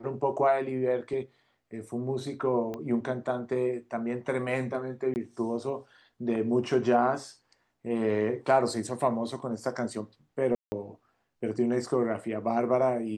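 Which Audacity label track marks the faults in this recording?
2.740000	2.740000	click −23 dBFS
5.140000	5.160000	drop-out 19 ms
10.550000	10.720000	drop-out 170 ms

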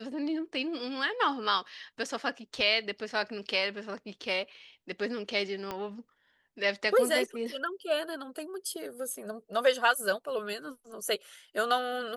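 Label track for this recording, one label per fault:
5.710000	5.710000	click −20 dBFS

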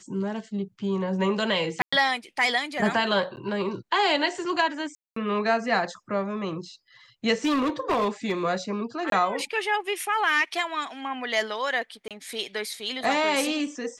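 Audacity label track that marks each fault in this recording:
1.820000	1.930000	drop-out 105 ms
3.360000	3.370000	drop-out 9.8 ms
4.950000	5.160000	drop-out 214 ms
7.440000	8.320000	clipping −20 dBFS
9.100000	9.120000	drop-out 22 ms
12.080000	12.110000	drop-out 27 ms

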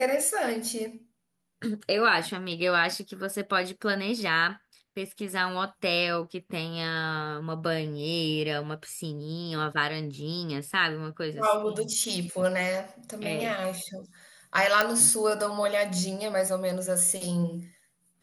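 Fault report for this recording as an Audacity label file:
14.810000	14.810000	click −8 dBFS

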